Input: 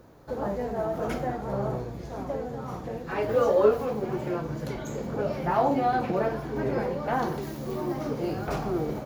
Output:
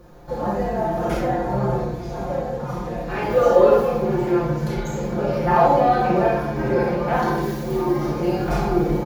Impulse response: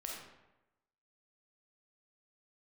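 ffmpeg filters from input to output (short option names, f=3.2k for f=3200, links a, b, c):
-filter_complex "[0:a]lowshelf=f=88:g=7.5,aecho=1:1:5.7:0.78[a];[1:a]atrim=start_sample=2205,asetrate=57330,aresample=44100[b];[a][b]afir=irnorm=-1:irlink=0,volume=8.5dB"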